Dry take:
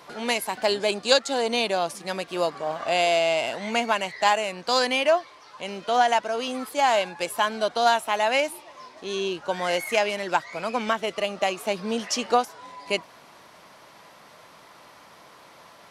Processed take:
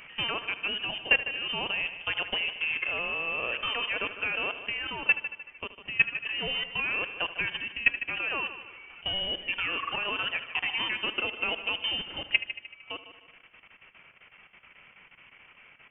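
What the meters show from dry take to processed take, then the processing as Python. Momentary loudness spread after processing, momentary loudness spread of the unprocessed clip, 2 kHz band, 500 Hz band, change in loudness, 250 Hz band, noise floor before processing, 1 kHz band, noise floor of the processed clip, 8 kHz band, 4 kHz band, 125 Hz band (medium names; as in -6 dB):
10 LU, 9 LU, +1.0 dB, -17.0 dB, -4.5 dB, -13.0 dB, -51 dBFS, -14.5 dB, -58 dBFS, under -40 dB, -1.5 dB, -5.0 dB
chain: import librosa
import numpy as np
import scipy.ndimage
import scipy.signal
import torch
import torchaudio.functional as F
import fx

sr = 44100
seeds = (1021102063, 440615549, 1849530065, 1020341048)

p1 = fx.low_shelf(x, sr, hz=250.0, db=-3.5)
p2 = fx.level_steps(p1, sr, step_db=17)
p3 = fx.transient(p2, sr, attack_db=3, sustain_db=-7)
p4 = fx.rider(p3, sr, range_db=4, speed_s=0.5)
p5 = fx.mod_noise(p4, sr, seeds[0], snr_db=17)
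p6 = p5 + fx.echo_heads(p5, sr, ms=76, heads='first and second', feedback_pct=49, wet_db=-14.5, dry=0)
y = fx.freq_invert(p6, sr, carrier_hz=3300)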